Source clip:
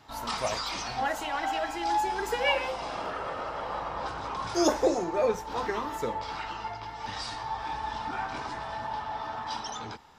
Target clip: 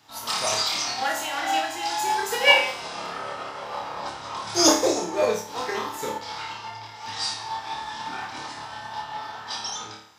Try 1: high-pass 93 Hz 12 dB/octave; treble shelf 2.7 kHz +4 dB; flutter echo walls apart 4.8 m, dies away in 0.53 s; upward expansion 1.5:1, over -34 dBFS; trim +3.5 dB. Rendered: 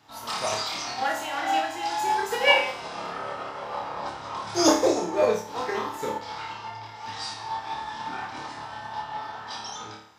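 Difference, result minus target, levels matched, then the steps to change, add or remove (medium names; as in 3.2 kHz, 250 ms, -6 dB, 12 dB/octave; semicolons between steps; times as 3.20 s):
4 kHz band -3.0 dB
change: treble shelf 2.7 kHz +12 dB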